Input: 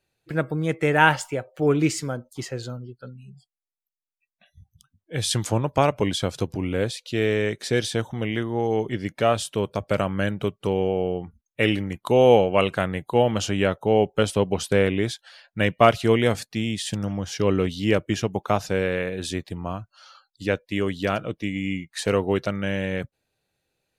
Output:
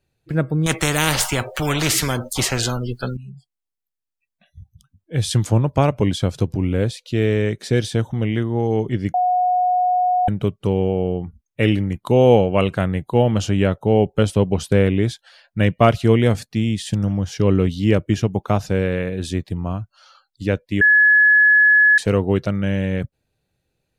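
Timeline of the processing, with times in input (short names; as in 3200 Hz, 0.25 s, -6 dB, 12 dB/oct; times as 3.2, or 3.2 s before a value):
0.66–3.17 spectral compressor 4:1
9.14–10.28 bleep 727 Hz -15 dBFS
20.81–21.98 bleep 1700 Hz -8.5 dBFS
whole clip: low shelf 280 Hz +11.5 dB; gain -1 dB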